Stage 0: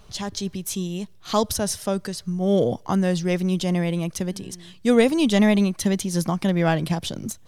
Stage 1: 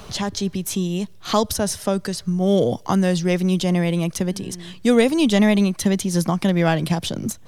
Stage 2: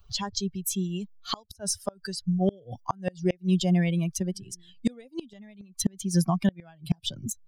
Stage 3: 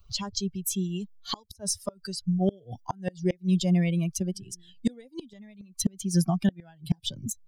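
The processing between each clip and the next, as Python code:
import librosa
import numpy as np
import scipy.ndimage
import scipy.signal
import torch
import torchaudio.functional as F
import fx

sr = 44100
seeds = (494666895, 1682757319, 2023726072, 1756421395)

y1 = fx.band_squash(x, sr, depth_pct=40)
y1 = y1 * 10.0 ** (2.5 / 20.0)
y2 = fx.bin_expand(y1, sr, power=2.0)
y2 = fx.gate_flip(y2, sr, shuts_db=-14.0, range_db=-31)
y2 = y2 * 10.0 ** (1.5 / 20.0)
y3 = fx.notch_cascade(y2, sr, direction='rising', hz=0.53)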